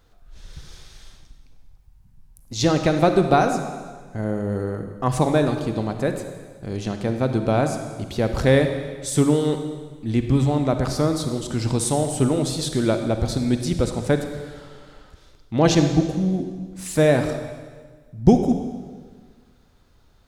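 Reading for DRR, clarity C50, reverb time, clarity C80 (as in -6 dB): 6.5 dB, 7.0 dB, 1.6 s, 8.5 dB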